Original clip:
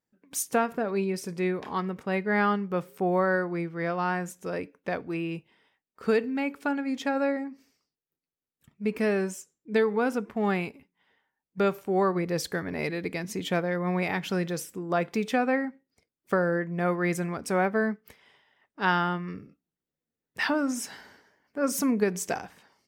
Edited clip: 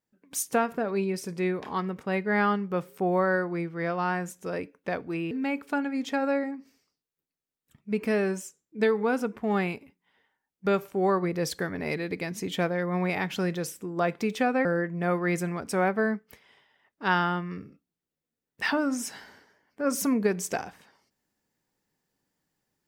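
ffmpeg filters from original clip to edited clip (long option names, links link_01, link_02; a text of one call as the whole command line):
ffmpeg -i in.wav -filter_complex "[0:a]asplit=3[link_01][link_02][link_03];[link_01]atrim=end=5.312[link_04];[link_02]atrim=start=6.238:end=15.582[link_05];[link_03]atrim=start=16.418[link_06];[link_04][link_05]acrossfade=duration=0.004:curve1=hsin:curve2=hsin[link_07];[link_07][link_06]acrossfade=duration=0.004:curve1=hsin:curve2=hsin" out.wav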